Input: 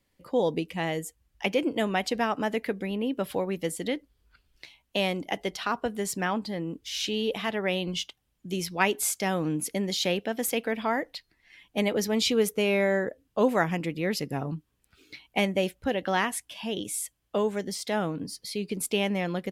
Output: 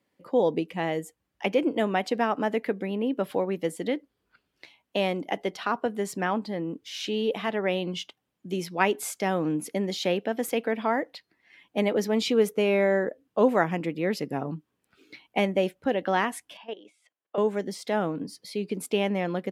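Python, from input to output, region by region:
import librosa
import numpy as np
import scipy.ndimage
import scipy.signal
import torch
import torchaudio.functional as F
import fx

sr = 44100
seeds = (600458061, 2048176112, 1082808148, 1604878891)

y = fx.chain(x, sr, fx.level_steps(step_db=15),
    fx.bandpass_edges(low_hz=440.0, high_hz=3200.0), at=(16.57, 17.38))
y = scipy.signal.sosfilt(scipy.signal.butter(2, 190.0, 'highpass', fs=sr, output='sos'), y)
y = fx.high_shelf(y, sr, hz=2600.0, db=-10.5)
y = y * 10.0 ** (3.0 / 20.0)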